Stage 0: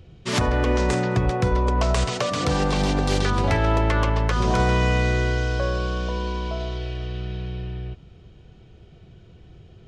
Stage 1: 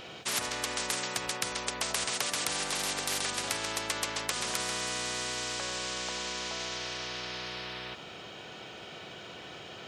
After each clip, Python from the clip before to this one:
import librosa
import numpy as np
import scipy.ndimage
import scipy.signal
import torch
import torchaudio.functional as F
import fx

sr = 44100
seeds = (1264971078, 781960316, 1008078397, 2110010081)

y = scipy.signal.sosfilt(scipy.signal.butter(2, 540.0, 'highpass', fs=sr, output='sos'), x)
y = fx.spectral_comp(y, sr, ratio=4.0)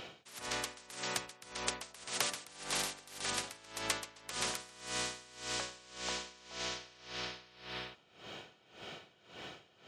y = x * 10.0 ** (-22 * (0.5 - 0.5 * np.cos(2.0 * np.pi * 1.8 * np.arange(len(x)) / sr)) / 20.0)
y = F.gain(torch.from_numpy(y), -1.0).numpy()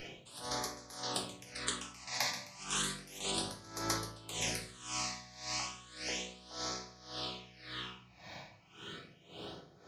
y = fx.phaser_stages(x, sr, stages=8, low_hz=400.0, high_hz=2900.0, hz=0.33, feedback_pct=5)
y = fx.room_shoebox(y, sr, seeds[0], volume_m3=44.0, walls='mixed', distance_m=0.64)
y = F.gain(torch.from_numpy(y), 1.0).numpy()